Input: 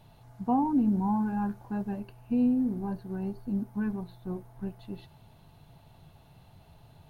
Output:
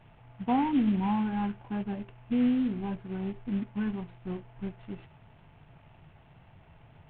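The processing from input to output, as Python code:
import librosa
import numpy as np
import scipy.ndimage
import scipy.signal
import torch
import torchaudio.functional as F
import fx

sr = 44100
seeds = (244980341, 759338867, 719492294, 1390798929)

y = fx.cvsd(x, sr, bps=16000)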